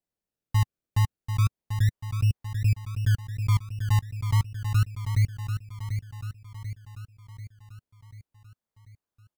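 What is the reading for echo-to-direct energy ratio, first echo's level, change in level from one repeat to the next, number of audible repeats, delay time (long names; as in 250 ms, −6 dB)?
−6.5 dB, −8.0 dB, −5.5 dB, 6, 740 ms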